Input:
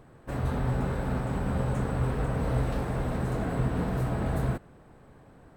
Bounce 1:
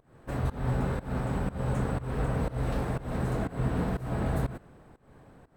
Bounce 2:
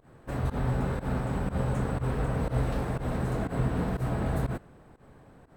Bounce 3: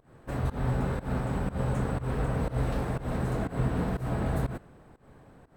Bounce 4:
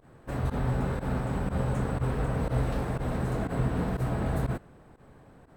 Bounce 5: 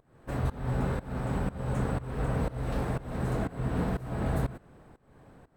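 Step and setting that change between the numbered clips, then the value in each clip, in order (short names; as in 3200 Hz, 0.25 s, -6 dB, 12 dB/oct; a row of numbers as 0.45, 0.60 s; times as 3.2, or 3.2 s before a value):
pump, release: 262, 97, 171, 64, 397 ms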